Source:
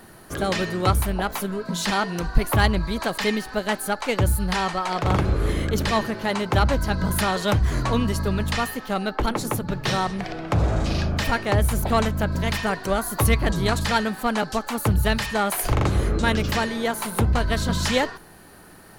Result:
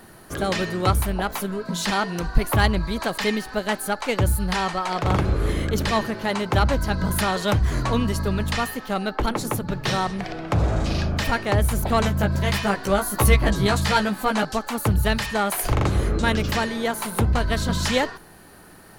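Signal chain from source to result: 12.01–14.45 doubler 15 ms -3 dB

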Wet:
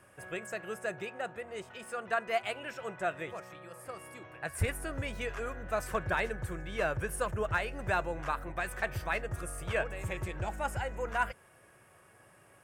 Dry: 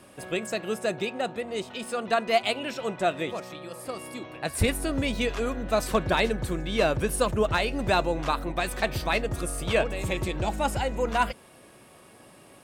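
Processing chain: fifteen-band EQ 100 Hz +6 dB, 250 Hz -9 dB, 1600 Hz +8 dB, 4000 Hz -10 dB; gain -8.5 dB

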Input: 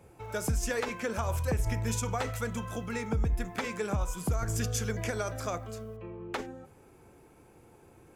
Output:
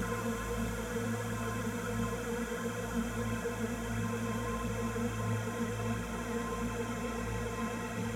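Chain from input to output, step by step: Paulstretch 43×, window 1.00 s, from 2.57; flange 1.5 Hz, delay 0.2 ms, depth 4.6 ms, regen +50%; gain +4 dB

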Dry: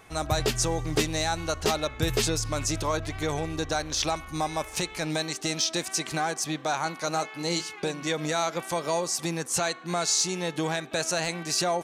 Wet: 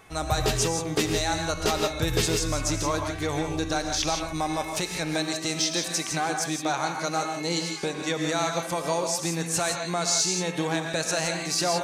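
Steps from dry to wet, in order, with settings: non-linear reverb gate 0.19 s rising, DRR 4 dB

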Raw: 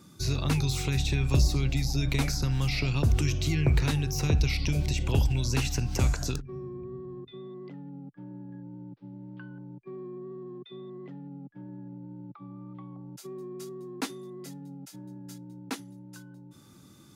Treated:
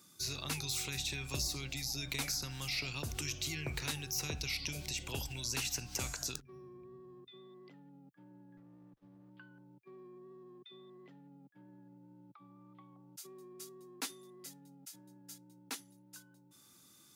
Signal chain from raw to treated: tilt +3 dB/oct; 8.57–9.3 running maximum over 17 samples; gain -9 dB

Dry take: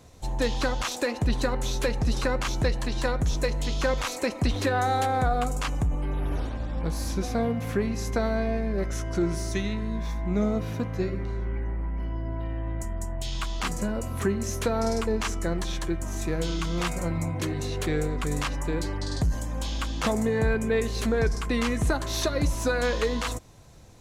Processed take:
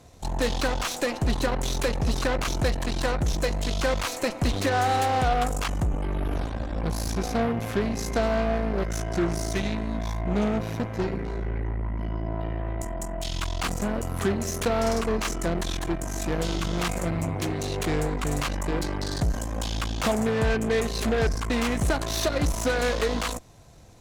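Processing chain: added harmonics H 8 -17 dB, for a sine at -15 dBFS; bell 690 Hz +4.5 dB 0.22 oct

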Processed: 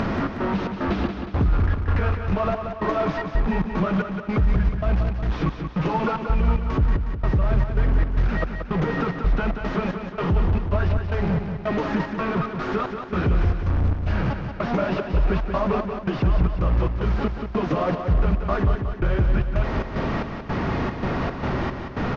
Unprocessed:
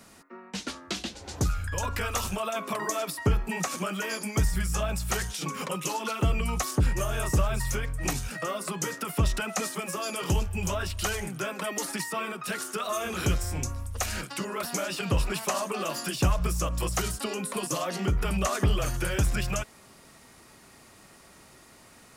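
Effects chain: delta modulation 32 kbps, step -27 dBFS; LPF 1500 Hz 12 dB/oct; low shelf 270 Hz +8 dB; in parallel at -1 dB: upward compressor, threshold -21 dBFS; on the sum: limiter -13 dBFS, peak gain reduction 11 dB; step gate "xx.xx.xx..x" 112 bpm; feedback echo 0.182 s, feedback 52%, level -7 dB

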